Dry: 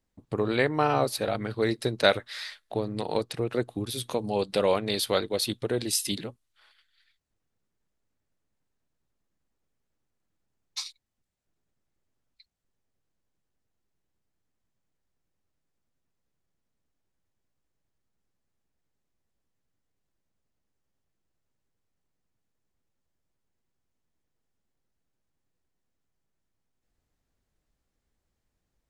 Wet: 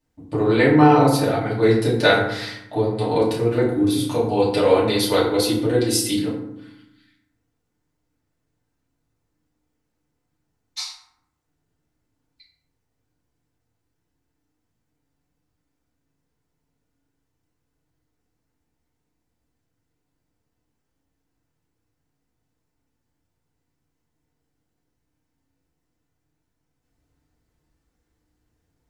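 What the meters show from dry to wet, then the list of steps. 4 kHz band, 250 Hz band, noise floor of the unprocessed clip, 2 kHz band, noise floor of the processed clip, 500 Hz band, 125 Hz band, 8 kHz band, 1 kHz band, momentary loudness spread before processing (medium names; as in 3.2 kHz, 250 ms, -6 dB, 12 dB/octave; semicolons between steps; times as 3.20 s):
+5.0 dB, +13.0 dB, -81 dBFS, +8.0 dB, -76 dBFS, +8.5 dB, +11.5 dB, +5.0 dB, +9.0 dB, 13 LU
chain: FDN reverb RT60 0.82 s, low-frequency decay 1.55×, high-frequency decay 0.5×, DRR -7.5 dB; trim -1 dB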